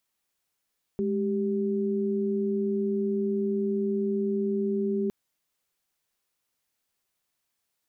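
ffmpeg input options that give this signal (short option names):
-f lavfi -i "aevalsrc='0.0447*(sin(2*PI*207.65*t)+sin(2*PI*392*t))':d=4.11:s=44100"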